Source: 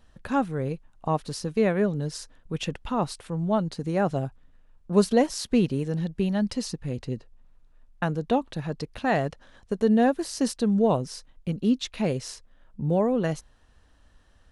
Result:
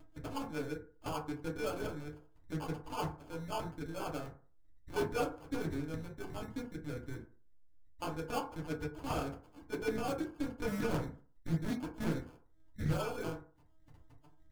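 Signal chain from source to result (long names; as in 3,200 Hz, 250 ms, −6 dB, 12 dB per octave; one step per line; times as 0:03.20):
0:10.57–0:12.91: parametric band 180 Hz +14.5 dB 0.69 octaves
upward compression, threshold −32 dBFS
low-shelf EQ 82 Hz +8.5 dB
linear-prediction vocoder at 8 kHz pitch kept
flanger 0.17 Hz, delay 7.3 ms, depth 5.6 ms, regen −68%
decimation without filtering 23×
harmonic and percussive parts rebalanced harmonic −14 dB
soft clipping −26.5 dBFS, distortion −10 dB
feedback delay network reverb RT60 0.41 s, low-frequency decay 0.9×, high-frequency decay 0.35×, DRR −2.5 dB
highs frequency-modulated by the lows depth 0.31 ms
level −5 dB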